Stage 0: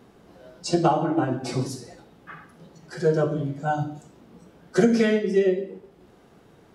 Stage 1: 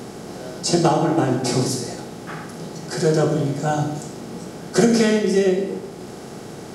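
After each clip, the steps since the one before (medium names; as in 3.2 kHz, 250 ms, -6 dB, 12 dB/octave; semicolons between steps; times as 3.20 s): spectral levelling over time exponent 0.6; tone controls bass +3 dB, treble +10 dB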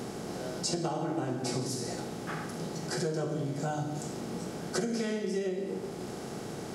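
compression 5:1, threshold -26 dBFS, peak gain reduction 14 dB; trim -4 dB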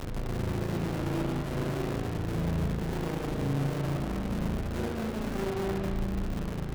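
Schmitt trigger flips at -33.5 dBFS; spring tank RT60 2.1 s, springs 36 ms, chirp 65 ms, DRR -2.5 dB; sliding maximum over 33 samples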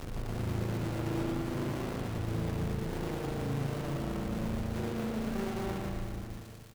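fade out at the end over 1.01 s; crackle 370 per s -39 dBFS; feedback delay 117 ms, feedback 58%, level -5.5 dB; trim -4.5 dB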